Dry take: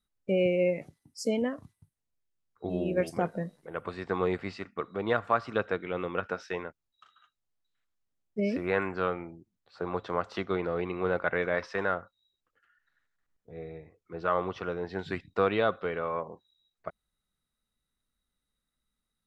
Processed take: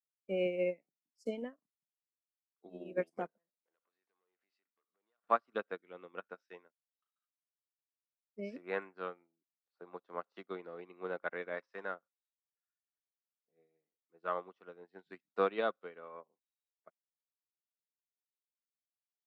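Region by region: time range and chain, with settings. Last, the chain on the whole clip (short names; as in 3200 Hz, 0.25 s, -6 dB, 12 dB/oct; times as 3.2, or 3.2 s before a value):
3.37–5.24 bell 150 Hz -13.5 dB 2.7 oct + compressor 5:1, threshold -45 dBFS + core saturation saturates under 1500 Hz
whole clip: HPF 200 Hz 24 dB/oct; upward expander 2.5:1, over -44 dBFS; gain -1.5 dB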